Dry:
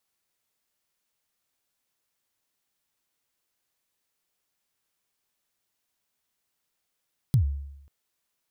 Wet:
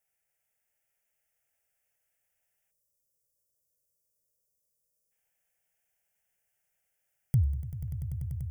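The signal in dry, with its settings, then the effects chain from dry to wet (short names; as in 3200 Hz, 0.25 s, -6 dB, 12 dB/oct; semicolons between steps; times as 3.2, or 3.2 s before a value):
kick drum length 0.54 s, from 150 Hz, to 70 Hz, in 99 ms, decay 0.85 s, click on, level -14.5 dB
fixed phaser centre 1100 Hz, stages 6; on a send: swelling echo 97 ms, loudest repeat 8, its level -13.5 dB; on the sum: spectral delete 2.71–5.11, 630–4500 Hz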